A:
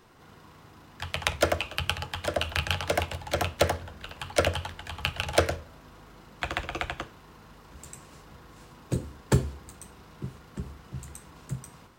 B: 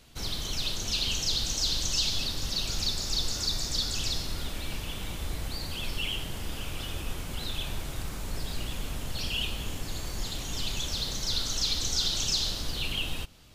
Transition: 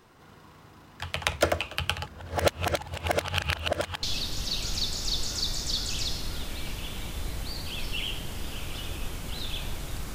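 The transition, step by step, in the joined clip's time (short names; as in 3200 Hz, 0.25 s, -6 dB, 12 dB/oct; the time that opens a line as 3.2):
A
2.06–4.03 reverse
4.03 switch to B from 2.08 s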